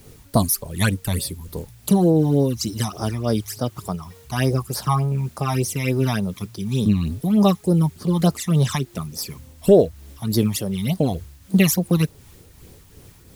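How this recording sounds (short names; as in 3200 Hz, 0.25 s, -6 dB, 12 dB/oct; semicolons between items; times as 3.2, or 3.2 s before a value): phasing stages 12, 3.4 Hz, lowest notch 460–2700 Hz; a quantiser's noise floor 10-bit, dither triangular; tremolo triangle 2.7 Hz, depth 40%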